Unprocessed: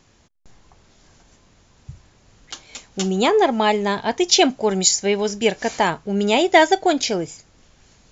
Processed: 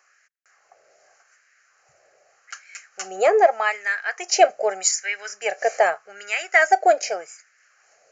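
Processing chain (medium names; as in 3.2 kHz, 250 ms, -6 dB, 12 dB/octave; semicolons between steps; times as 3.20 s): resampled via 16 kHz; static phaser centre 960 Hz, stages 6; LFO high-pass sine 0.83 Hz 570–1700 Hz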